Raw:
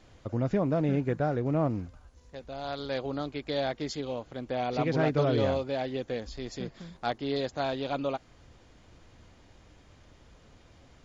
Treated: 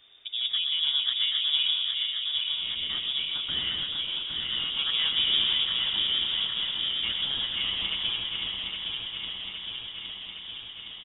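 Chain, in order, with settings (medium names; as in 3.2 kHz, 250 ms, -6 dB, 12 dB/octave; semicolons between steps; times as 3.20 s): backward echo that repeats 407 ms, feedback 83%, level -4 dB; frequency inversion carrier 3.6 kHz; feedback delay 127 ms, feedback 58%, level -8 dB; trim -2.5 dB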